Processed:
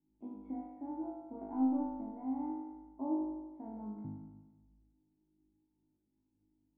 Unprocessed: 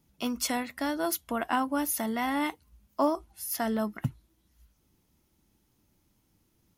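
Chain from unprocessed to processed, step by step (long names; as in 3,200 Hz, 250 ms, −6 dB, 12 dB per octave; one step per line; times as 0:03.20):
0:01.41–0:01.88: leveller curve on the samples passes 1
formant resonators in series u
tuned comb filter 54 Hz, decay 1.5 s, harmonics all, mix 70%
on a send: flutter between parallel walls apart 3.3 metres, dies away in 1.2 s
on the sum: level +2.5 dB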